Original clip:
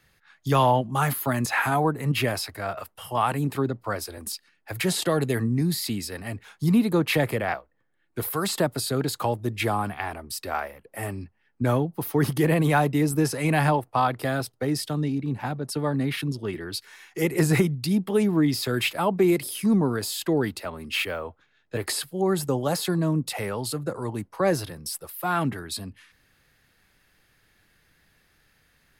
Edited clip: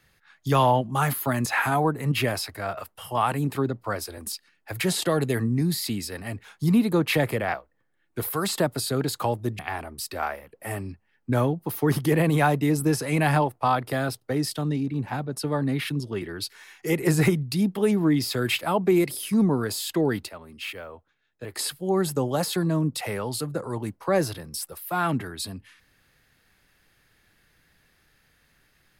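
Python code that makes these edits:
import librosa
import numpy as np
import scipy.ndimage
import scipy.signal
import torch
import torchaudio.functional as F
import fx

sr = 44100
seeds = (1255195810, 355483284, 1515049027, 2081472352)

y = fx.edit(x, sr, fx.cut(start_s=9.59, length_s=0.32),
    fx.clip_gain(start_s=20.61, length_s=1.3, db=-8.0), tone=tone)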